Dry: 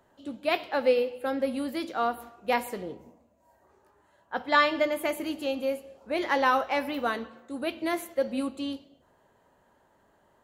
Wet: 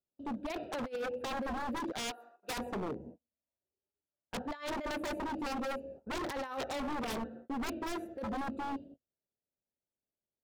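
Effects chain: Wiener smoothing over 41 samples; gate -55 dBFS, range -36 dB; 1.92–2.58 HPF 900 Hz 12 dB/oct; negative-ratio compressor -31 dBFS, ratio -0.5; wavefolder -33.5 dBFS; gain +2 dB

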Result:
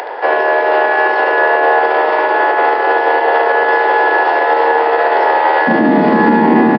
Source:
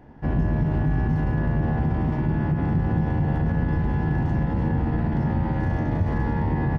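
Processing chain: steep high-pass 430 Hz 48 dB/oct, from 5.67 s 210 Hz; upward compressor, threshold -40 dBFS; echo 73 ms -7 dB; downsampling 11025 Hz; maximiser +24.5 dB; gain -1 dB

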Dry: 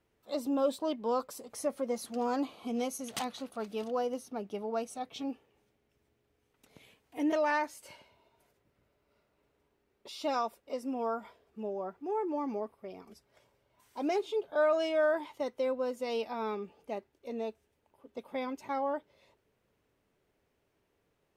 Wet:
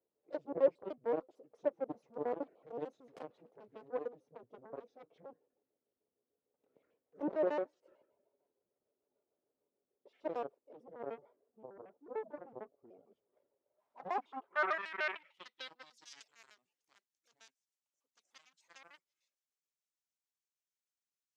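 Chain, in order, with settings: trilling pitch shifter -8.5 st, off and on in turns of 75 ms; added harmonics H 3 -22 dB, 7 -16 dB, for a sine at -18.5 dBFS; band-pass sweep 490 Hz -> 6600 Hz, 13.53–16.24; gain +3.5 dB

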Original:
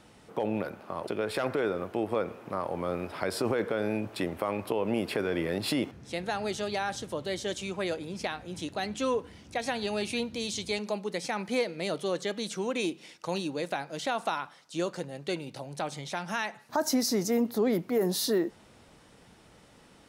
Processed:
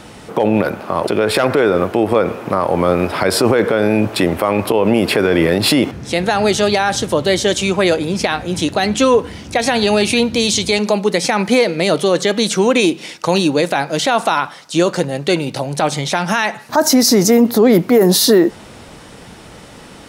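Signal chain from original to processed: maximiser +21.5 dB; gain -2.5 dB

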